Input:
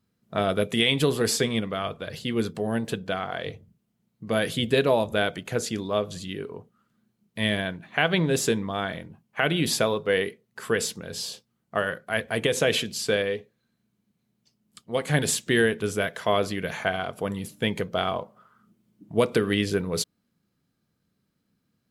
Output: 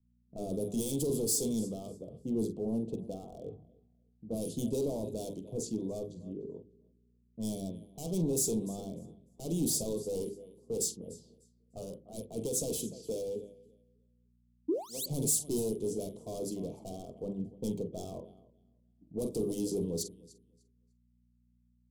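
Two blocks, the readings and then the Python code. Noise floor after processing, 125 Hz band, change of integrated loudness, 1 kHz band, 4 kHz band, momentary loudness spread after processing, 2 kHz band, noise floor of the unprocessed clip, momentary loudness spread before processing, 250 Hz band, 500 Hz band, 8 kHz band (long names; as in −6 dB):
−70 dBFS, −9.0 dB, −9.0 dB, −20.5 dB, −17.0 dB, 16 LU, below −40 dB, −76 dBFS, 11 LU, −6.5 dB, −10.5 dB, −2.0 dB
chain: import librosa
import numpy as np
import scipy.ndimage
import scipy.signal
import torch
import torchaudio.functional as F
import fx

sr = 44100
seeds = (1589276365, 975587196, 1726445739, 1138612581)

y = fx.env_lowpass(x, sr, base_hz=360.0, full_db=-20.5)
y = fx.dmg_buzz(y, sr, base_hz=60.0, harmonics=4, level_db=-55.0, tilt_db=-4, odd_only=False)
y = fx.doubler(y, sr, ms=46.0, db=-12.0)
y = fx.spec_paint(y, sr, seeds[0], shape='rise', start_s=14.68, length_s=0.38, low_hz=280.0, high_hz=4800.0, level_db=-22.0)
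y = fx.low_shelf(y, sr, hz=150.0, db=-9.0)
y = fx.hum_notches(y, sr, base_hz=50, count=8)
y = fx.echo_feedback(y, sr, ms=299, feedback_pct=31, wet_db=-19.0)
y = np.clip(10.0 ** (26.5 / 20.0) * y, -1.0, 1.0) / 10.0 ** (26.5 / 20.0)
y = fx.dynamic_eq(y, sr, hz=1000.0, q=0.89, threshold_db=-46.0, ratio=4.0, max_db=5)
y = scipy.signal.sosfilt(scipy.signal.cheby1(2, 1.0, [320.0, 7800.0], 'bandstop', fs=sr, output='sos'), y)
y = fx.band_widen(y, sr, depth_pct=40)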